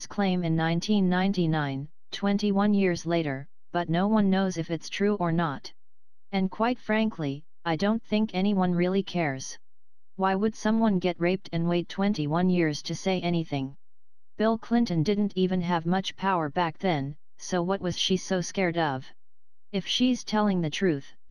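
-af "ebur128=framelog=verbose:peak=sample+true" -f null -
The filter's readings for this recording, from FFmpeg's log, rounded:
Integrated loudness:
  I:         -27.0 LUFS
  Threshold: -37.3 LUFS
Loudness range:
  LRA:         2.3 LU
  Threshold: -47.5 LUFS
  LRA low:   -28.7 LUFS
  LRA high:  -26.4 LUFS
Sample peak:
  Peak:      -11.5 dBFS
True peak:
  Peak:      -11.5 dBFS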